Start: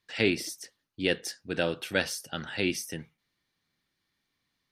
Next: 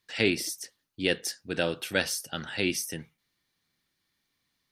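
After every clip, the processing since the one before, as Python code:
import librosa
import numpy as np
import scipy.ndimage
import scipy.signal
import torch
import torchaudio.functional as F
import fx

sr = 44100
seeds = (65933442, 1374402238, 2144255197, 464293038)

y = fx.high_shelf(x, sr, hz=5500.0, db=6.5)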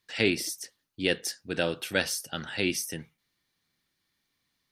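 y = x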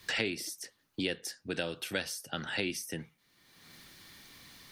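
y = fx.band_squash(x, sr, depth_pct=100)
y = F.gain(torch.from_numpy(y), -6.5).numpy()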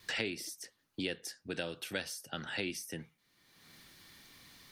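y = fx.vibrato(x, sr, rate_hz=0.7, depth_cents=6.7)
y = F.gain(torch.from_numpy(y), -3.5).numpy()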